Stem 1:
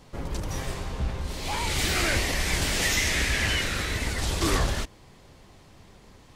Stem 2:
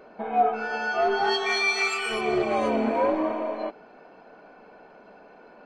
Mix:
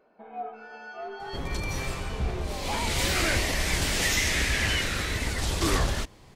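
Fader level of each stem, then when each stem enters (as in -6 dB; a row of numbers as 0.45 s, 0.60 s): -0.5 dB, -14.5 dB; 1.20 s, 0.00 s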